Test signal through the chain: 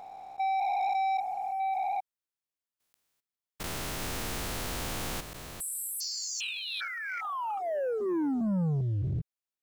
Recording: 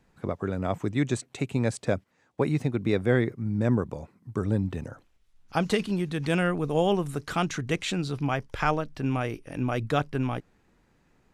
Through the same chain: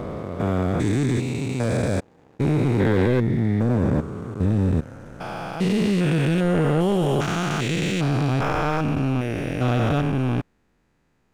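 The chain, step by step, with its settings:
spectrum averaged block by block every 400 ms
leveller curve on the samples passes 2
level +3.5 dB

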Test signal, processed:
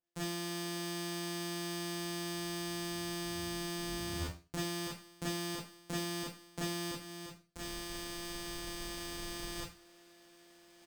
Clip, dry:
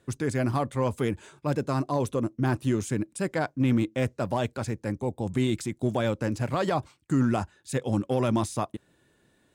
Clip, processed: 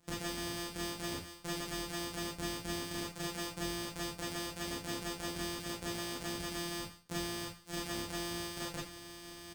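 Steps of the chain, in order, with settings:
samples sorted by size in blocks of 256 samples
first-order pre-emphasis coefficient 0.8
reversed playback
upward compression, threshold −35 dBFS
reversed playback
brickwall limiter −18.5 dBFS
downward compressor, threshold −39 dBFS
on a send: flutter between parallel walls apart 9 metres, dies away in 0.22 s
on the sum: four-comb reverb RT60 0.31 s, combs from 26 ms, DRR −4.5 dB
downsampling to 22,050 Hz
windowed peak hold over 3 samples
level +4 dB

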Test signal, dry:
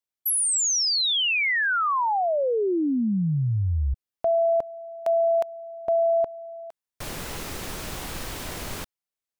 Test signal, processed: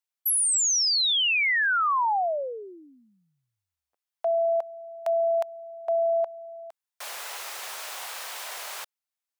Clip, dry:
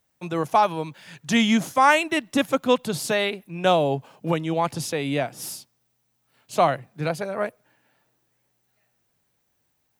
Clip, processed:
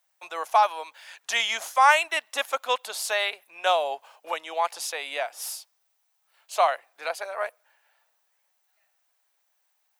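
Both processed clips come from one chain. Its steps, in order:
high-pass filter 650 Hz 24 dB per octave

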